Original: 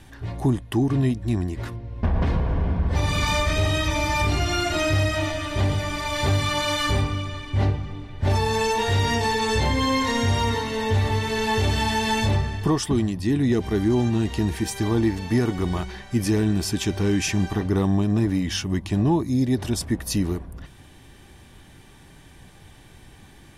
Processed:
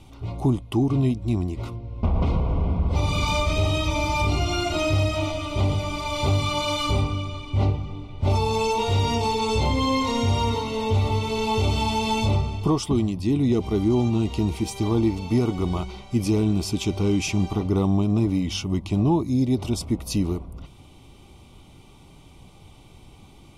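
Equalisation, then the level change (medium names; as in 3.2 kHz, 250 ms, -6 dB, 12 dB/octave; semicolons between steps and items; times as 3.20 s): Butterworth band-stop 1.7 kHz, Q 2.2; treble shelf 6.8 kHz -7 dB; 0.0 dB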